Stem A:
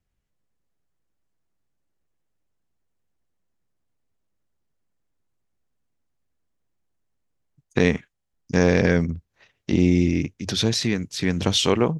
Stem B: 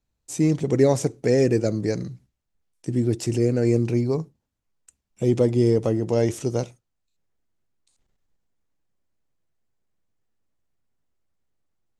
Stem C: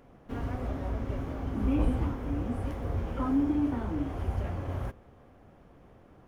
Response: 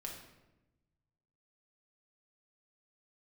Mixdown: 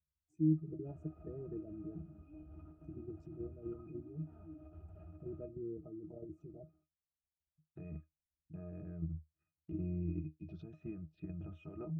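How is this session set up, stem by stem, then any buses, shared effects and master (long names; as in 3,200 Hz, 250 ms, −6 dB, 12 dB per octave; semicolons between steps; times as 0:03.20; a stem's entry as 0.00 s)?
−4.5 dB, 0.00 s, bus A, no send, low-pass filter 1,700 Hz 6 dB per octave
−7.0 dB, 0.00 s, bus A, no send, gate on every frequency bin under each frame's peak −20 dB strong
−6.5 dB, 0.55 s, no bus, no send, low-shelf EQ 72 Hz −10.5 dB; mains-hum notches 60/120/180/240/300 Hz; brickwall limiter −27 dBFS, peak gain reduction 8 dB
bus A: 0.0 dB, phaser swept by the level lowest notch 380 Hz, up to 4,600 Hz, full sweep at −26 dBFS; brickwall limiter −18 dBFS, peak gain reduction 8 dB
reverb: not used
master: output level in coarse steps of 9 dB; resonances in every octave D#, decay 0.15 s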